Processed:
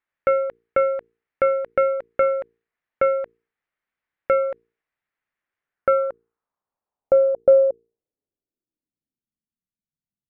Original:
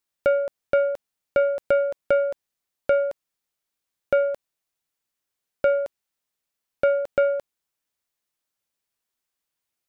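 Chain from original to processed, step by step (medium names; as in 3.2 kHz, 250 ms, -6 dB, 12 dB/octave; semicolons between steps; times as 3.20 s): low-pass sweep 2 kHz -> 200 Hz, 5.32–9.21 s; hum notches 60/120/180/240/300/360/420/480 Hz; speed mistake 25 fps video run at 24 fps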